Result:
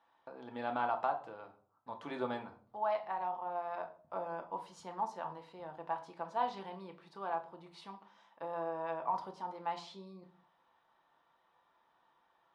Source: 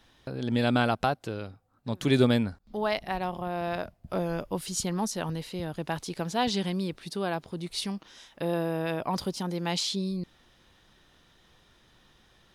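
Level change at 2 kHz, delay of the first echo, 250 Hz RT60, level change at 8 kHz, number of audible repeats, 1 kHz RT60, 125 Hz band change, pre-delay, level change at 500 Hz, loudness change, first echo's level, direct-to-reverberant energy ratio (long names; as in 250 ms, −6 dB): −12.0 dB, no echo audible, 0.60 s, below −25 dB, no echo audible, 0.40 s, −24.5 dB, 3 ms, −10.0 dB, −9.5 dB, no echo audible, 3.5 dB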